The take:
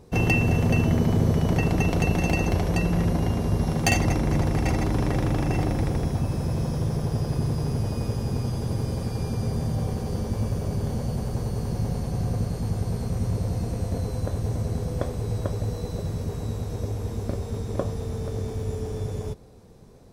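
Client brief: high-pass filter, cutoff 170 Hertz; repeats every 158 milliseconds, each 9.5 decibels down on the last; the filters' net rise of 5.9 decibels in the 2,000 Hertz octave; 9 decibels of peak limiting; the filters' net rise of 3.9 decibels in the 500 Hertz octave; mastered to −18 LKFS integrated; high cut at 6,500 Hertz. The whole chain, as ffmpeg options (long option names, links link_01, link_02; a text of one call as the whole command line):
ffmpeg -i in.wav -af "highpass=170,lowpass=6500,equalizer=frequency=500:width_type=o:gain=4.5,equalizer=frequency=2000:width_type=o:gain=8.5,alimiter=limit=-15dB:level=0:latency=1,aecho=1:1:158|316|474|632:0.335|0.111|0.0365|0.012,volume=10dB" out.wav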